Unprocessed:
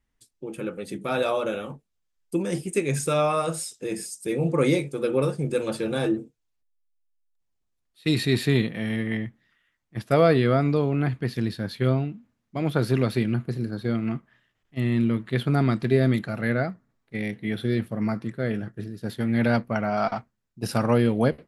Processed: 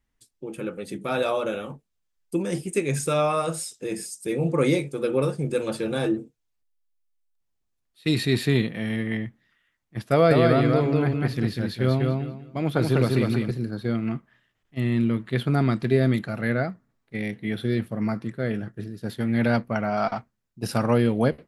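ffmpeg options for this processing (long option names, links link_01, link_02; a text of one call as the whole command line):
ffmpeg -i in.wav -filter_complex "[0:a]asettb=1/sr,asplit=3[link_01][link_02][link_03];[link_01]atrim=end=10.114[link_04];[link_02]atrim=start=10.11:end=13.51,asetpts=PTS-STARTPTS,afade=type=in:duration=0.004:curve=qsin,afade=type=out:start_time=3.396:duration=0.004:curve=qsin,aecho=1:1:196|392|588:0.708|0.163|0.0375,atrim=end_sample=149940[link_05];[link_03]atrim=start=13.506[link_06];[link_04][link_05]acrossfade=duration=0.004:curve1=hsin:curve2=qsin[link_07];[link_07][link_06]acrossfade=duration=0.004:curve1=qsin:curve2=hsin" out.wav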